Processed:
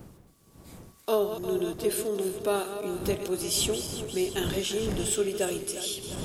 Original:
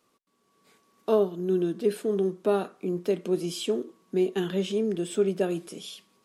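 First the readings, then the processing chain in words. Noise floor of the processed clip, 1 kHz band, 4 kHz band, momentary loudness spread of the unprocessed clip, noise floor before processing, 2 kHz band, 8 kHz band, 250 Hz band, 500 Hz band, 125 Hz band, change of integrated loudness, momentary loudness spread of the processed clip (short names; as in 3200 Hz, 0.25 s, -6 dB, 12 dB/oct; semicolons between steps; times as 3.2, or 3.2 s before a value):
-57 dBFS, +1.0 dB, +6.5 dB, 7 LU, -71 dBFS, +3.5 dB, +13.0 dB, -4.0 dB, -2.5 dB, -1.5 dB, -1.5 dB, 5 LU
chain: regenerating reverse delay 0.176 s, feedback 75%, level -10 dB; wind noise 120 Hz -28 dBFS; RIAA curve recording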